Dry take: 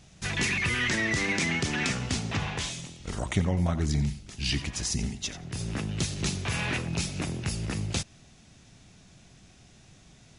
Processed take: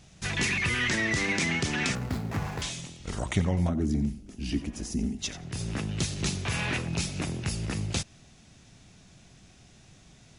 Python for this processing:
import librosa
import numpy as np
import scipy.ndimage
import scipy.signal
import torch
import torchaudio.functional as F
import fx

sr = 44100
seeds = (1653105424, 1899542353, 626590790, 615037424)

y = fx.median_filter(x, sr, points=15, at=(1.95, 2.62))
y = fx.graphic_eq(y, sr, hz=(125, 250, 1000, 2000, 4000, 8000), db=(-10, 10, -7, -7, -11, -7), at=(3.68, 5.18), fade=0.02)